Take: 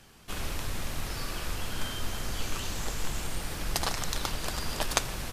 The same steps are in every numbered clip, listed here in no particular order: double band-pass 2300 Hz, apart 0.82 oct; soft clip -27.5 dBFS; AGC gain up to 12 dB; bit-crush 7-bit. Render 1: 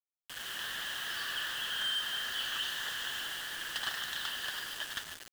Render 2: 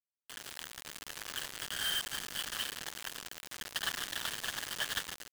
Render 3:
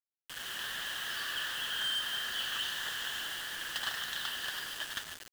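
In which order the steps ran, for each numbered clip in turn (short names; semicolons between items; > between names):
AGC > double band-pass > bit-crush > soft clip; double band-pass > bit-crush > AGC > soft clip; AGC > double band-pass > soft clip > bit-crush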